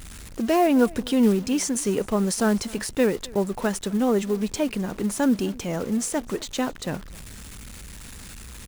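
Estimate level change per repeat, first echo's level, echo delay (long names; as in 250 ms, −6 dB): repeats not evenly spaced, −23.0 dB, 259 ms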